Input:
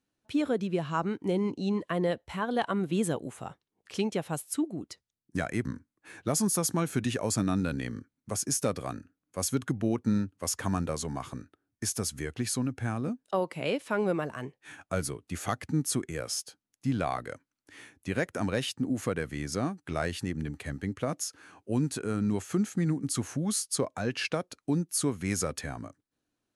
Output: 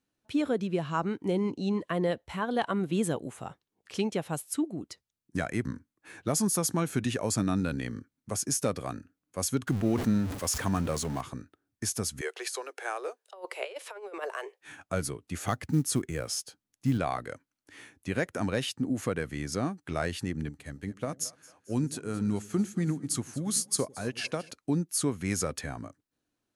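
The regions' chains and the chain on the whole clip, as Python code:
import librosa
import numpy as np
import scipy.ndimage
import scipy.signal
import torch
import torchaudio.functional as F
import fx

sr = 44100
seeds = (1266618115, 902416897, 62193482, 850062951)

y = fx.chain(x, sr, fx.zero_step(step_db=-39.0),
    fx.sustainer(db_per_s=76.0), at=(9.67, 11.21))
y = fx.chain(y, sr, fx.steep_highpass(hz=380.0, slope=72),
    fx.over_compress(threshold_db=-35.0, ratio=-0.5), at=(12.21, 14.61))
y = fx.chain(y, sr, fx.low_shelf(hz=180.0, db=5.0),
    fx.quant_float(bits=4), at=(15.41, 16.98))
y = fx.chain(y, sr, fx.bass_treble(bass_db=0, treble_db=4),
    fx.echo_split(split_hz=460.0, low_ms=96, high_ms=223, feedback_pct=52, wet_db=-15),
    fx.upward_expand(threshold_db=-43.0, expansion=1.5), at=(20.49, 24.51))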